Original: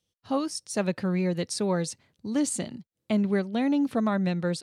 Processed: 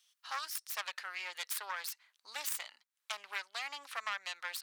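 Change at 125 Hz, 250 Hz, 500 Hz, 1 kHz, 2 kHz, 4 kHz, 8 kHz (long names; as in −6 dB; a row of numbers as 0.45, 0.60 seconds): below −40 dB, below −40 dB, −26.0 dB, −7.0 dB, −1.0 dB, −2.0 dB, −7.5 dB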